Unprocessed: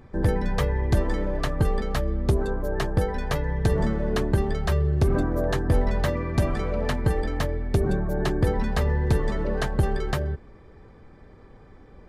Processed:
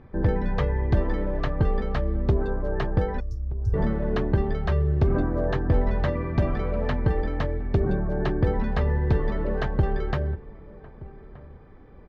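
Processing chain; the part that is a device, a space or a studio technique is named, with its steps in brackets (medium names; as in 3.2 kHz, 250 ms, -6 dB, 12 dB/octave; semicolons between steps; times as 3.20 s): 3.20–3.74 s: Chebyshev band-stop 110–5400 Hz, order 5; shout across a valley (distance through air 250 m; echo from a far wall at 210 m, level -19 dB)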